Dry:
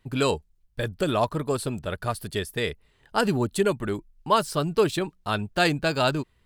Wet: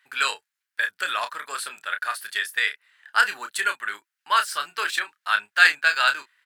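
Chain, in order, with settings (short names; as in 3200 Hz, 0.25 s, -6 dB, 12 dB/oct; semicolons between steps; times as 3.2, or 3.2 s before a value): resonant high-pass 1600 Hz, resonance Q 3.4; doubler 29 ms -8 dB; gain +2 dB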